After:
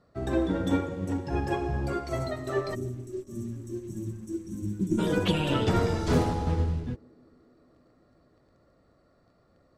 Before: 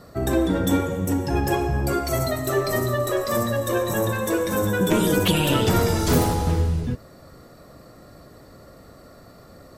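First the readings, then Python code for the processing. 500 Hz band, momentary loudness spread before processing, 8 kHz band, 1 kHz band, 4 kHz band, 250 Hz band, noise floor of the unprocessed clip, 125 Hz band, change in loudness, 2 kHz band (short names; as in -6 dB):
-8.0 dB, 5 LU, -16.5 dB, -8.0 dB, -9.5 dB, -6.0 dB, -48 dBFS, -6.0 dB, -7.5 dB, -10.0 dB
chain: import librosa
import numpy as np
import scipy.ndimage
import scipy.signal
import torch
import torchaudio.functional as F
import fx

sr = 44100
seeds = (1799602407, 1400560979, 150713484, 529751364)

p1 = fx.spec_box(x, sr, start_s=2.75, length_s=2.24, low_hz=390.0, high_hz=5500.0, gain_db=-29)
p2 = fx.high_shelf(p1, sr, hz=5900.0, db=-6.0)
p3 = fx.quant_dither(p2, sr, seeds[0], bits=6, dither='none')
p4 = p2 + F.gain(torch.from_numpy(p3), -11.5).numpy()
p5 = fx.air_absorb(p4, sr, metres=60.0)
p6 = p5 + fx.echo_banded(p5, sr, ms=150, feedback_pct=84, hz=330.0, wet_db=-16.5, dry=0)
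p7 = fx.upward_expand(p6, sr, threshold_db=-37.0, expansion=1.5)
y = F.gain(torch.from_numpy(p7), -5.5).numpy()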